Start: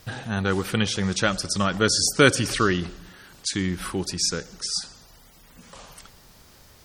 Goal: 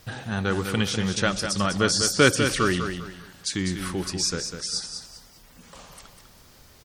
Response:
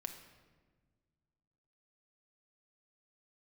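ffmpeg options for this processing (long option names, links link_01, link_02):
-af "aecho=1:1:199|398|597|796:0.422|0.127|0.038|0.0114,volume=-1.5dB"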